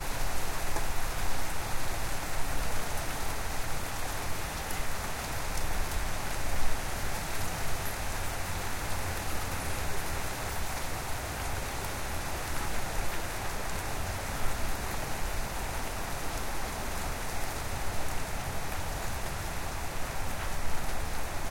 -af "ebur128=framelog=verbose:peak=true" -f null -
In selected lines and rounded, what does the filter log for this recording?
Integrated loudness:
  I:         -35.3 LUFS
  Threshold: -45.3 LUFS
Loudness range:
  LRA:         1.1 LU
  Threshold: -55.2 LUFS
  LRA low:   -35.9 LUFS
  LRA high:  -34.7 LUFS
True peak:
  Peak:      -13.1 dBFS